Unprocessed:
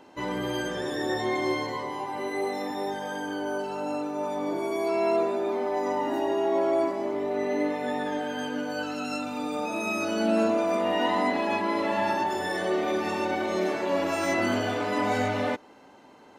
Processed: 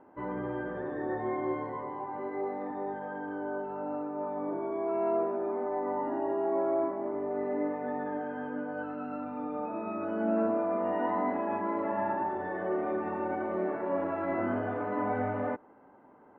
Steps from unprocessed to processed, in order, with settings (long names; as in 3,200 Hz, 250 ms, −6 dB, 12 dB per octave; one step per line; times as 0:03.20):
low-pass filter 1,600 Hz 24 dB per octave
level −4.5 dB